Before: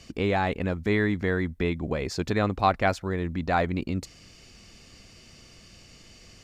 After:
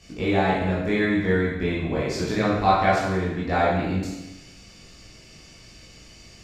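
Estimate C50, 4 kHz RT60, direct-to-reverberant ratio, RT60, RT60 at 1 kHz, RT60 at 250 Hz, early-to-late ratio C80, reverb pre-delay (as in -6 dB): 0.0 dB, 0.95 s, -8.0 dB, 1.0 s, 1.0 s, 1.0 s, 3.5 dB, 17 ms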